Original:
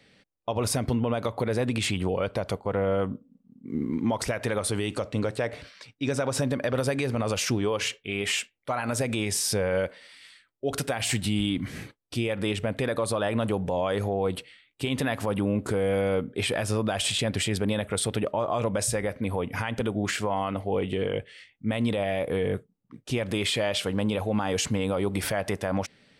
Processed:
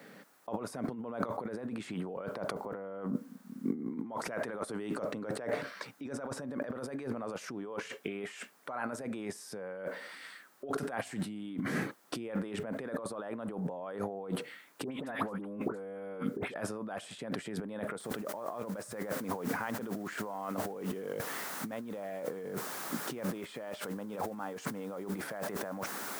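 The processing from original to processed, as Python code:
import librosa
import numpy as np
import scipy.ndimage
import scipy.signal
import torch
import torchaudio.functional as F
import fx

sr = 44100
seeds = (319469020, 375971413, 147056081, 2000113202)

y = fx.dispersion(x, sr, late='highs', ms=83.0, hz=1500.0, at=(14.84, 16.54))
y = fx.noise_floor_step(y, sr, seeds[0], at_s=18.0, before_db=-67, after_db=-42, tilt_db=0.0)
y = scipy.signal.sosfilt(scipy.signal.butter(4, 170.0, 'highpass', fs=sr, output='sos'), y)
y = fx.over_compress(y, sr, threshold_db=-38.0, ratio=-1.0)
y = fx.high_shelf_res(y, sr, hz=2000.0, db=-9.0, q=1.5)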